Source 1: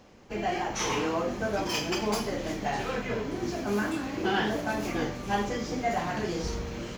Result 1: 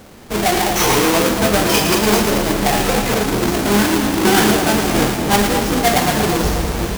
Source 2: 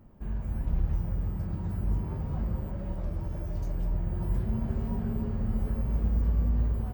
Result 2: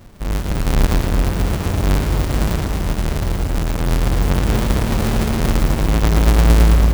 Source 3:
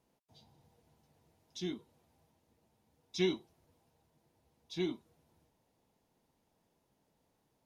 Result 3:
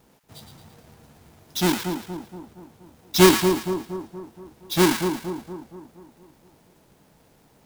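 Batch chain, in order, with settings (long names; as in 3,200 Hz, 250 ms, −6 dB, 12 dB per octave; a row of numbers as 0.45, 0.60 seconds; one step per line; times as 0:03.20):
each half-wave held at its own peak
high-shelf EQ 4,800 Hz +4.5 dB
on a send: echo with a time of its own for lows and highs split 1,100 Hz, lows 235 ms, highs 112 ms, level −6.5 dB
on the sum: normalise the peak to −1.5 dBFS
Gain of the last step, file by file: +8.5, +7.5, +12.5 decibels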